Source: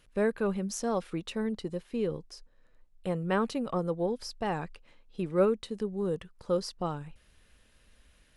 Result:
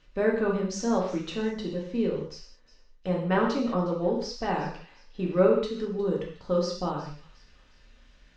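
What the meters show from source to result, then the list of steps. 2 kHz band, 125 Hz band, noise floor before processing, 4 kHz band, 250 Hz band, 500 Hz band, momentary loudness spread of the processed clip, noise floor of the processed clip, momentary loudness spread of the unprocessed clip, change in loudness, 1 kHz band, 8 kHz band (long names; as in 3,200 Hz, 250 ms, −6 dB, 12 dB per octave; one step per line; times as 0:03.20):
+4.5 dB, +3.5 dB, −64 dBFS, +4.0 dB, +4.0 dB, +4.0 dB, 12 LU, −58 dBFS, 13 LU, +4.0 dB, +4.0 dB, +0.5 dB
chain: Butterworth low-pass 6,500 Hz 36 dB per octave
on a send: delay with a high-pass on its return 361 ms, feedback 40%, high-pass 2,100 Hz, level −17 dB
on the sum: reverb whose tail is shaped and stops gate 230 ms falling, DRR −2 dB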